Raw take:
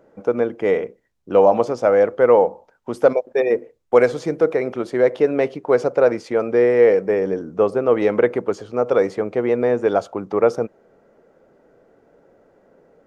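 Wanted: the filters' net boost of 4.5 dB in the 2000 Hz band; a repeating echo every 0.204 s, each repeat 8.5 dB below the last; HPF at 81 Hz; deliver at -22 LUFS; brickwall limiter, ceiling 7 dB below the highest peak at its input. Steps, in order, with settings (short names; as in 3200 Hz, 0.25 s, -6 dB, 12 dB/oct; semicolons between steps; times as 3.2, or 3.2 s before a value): HPF 81 Hz; bell 2000 Hz +5.5 dB; limiter -8 dBFS; feedback echo 0.204 s, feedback 38%, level -8.5 dB; gain -2.5 dB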